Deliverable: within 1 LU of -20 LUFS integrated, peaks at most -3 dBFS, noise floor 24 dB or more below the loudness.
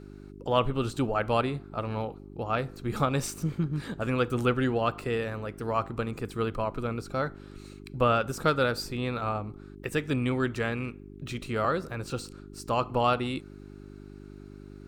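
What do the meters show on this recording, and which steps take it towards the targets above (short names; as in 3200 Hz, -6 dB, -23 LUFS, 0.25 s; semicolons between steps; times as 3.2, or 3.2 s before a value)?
hum 50 Hz; harmonics up to 400 Hz; hum level -45 dBFS; loudness -30.0 LUFS; peak -9.0 dBFS; loudness target -20.0 LUFS
-> de-hum 50 Hz, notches 8; gain +10 dB; limiter -3 dBFS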